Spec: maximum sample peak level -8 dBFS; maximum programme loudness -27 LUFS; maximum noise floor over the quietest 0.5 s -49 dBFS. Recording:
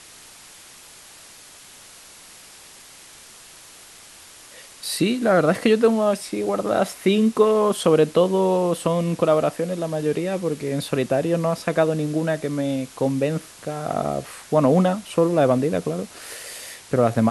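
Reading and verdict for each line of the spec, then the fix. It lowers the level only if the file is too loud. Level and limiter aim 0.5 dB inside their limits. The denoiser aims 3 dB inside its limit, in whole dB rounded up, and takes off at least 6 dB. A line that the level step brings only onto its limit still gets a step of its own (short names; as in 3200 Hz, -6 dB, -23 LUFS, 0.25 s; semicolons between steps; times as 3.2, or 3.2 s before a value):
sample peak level -5.0 dBFS: fail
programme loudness -21.5 LUFS: fail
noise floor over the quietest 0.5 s -45 dBFS: fail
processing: gain -6 dB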